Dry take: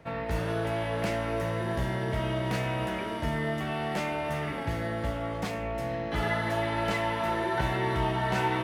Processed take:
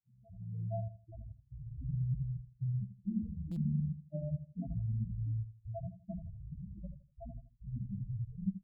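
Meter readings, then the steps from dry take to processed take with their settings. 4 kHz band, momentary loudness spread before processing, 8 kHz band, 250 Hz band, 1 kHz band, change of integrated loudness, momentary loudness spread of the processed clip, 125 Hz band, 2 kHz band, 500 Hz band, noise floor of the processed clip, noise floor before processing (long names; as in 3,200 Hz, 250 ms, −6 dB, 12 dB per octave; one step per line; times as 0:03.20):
below −40 dB, 5 LU, below −30 dB, −7.5 dB, below −25 dB, −9.5 dB, 14 LU, −3.5 dB, below −40 dB, −21.0 dB, −68 dBFS, −34 dBFS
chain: fade in at the beginning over 1.31 s
wrap-around overflow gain 25 dB
spectral tilt −4.5 dB per octave
single-tap delay 864 ms −21.5 dB
gate pattern "xxxxxxxx..xx.." 138 BPM −60 dB
spectral peaks only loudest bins 4
automatic gain control gain up to 7.5 dB
pair of resonant band-passes 380 Hz, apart 2 octaves
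repeating echo 81 ms, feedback 30%, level −12 dB
buffer that repeats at 0:03.51, samples 256, times 8
barber-pole flanger 5.4 ms −0.39 Hz
level +1.5 dB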